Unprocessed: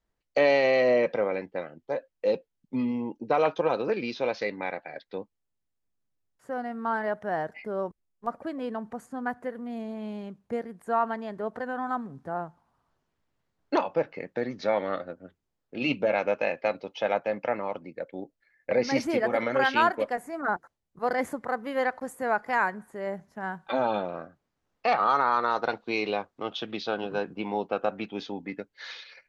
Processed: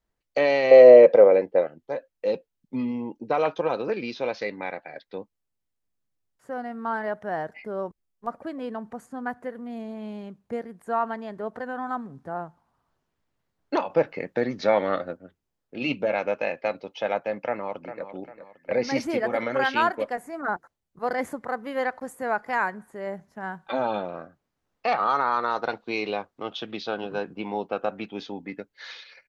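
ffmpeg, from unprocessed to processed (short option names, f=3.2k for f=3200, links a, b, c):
-filter_complex "[0:a]asettb=1/sr,asplit=3[a][b][c];[a]atrim=end=0.714[d];[b]atrim=start=0.71:end=1.67,asetpts=PTS-STARTPTS,afade=t=in:d=0.004:c=qsin,afade=t=out:st=0.956:d=0.004:c=qsin,equalizer=f=510:w=1.1:g=14[e];[c]atrim=start=1.666[f];[d][e]acrossfade=d=0.004:c1=hsin:c2=qsin[g];[g][f]acrossfade=d=0.004:c1=qsin:c2=hsin,asplit=2[h][i];[i]afade=t=in:st=17.39:d=0.01,afade=t=out:st=18.05:d=0.01,aecho=0:1:400|800|1200|1600:0.281838|0.112735|0.0450941|0.0180377[j];[h][j]amix=inputs=2:normalize=0,asplit=3[k][l][m];[k]atrim=end=13.902[n];[l]atrim=start=13.898:end=15.172,asetpts=PTS-STARTPTS,volume=5dB[o];[m]atrim=start=15.168[p];[n][o]acrossfade=d=0.004:c1=hsin:c2=hsin[q];[q][p]acrossfade=d=0.004:c1=hsin:c2=hsin"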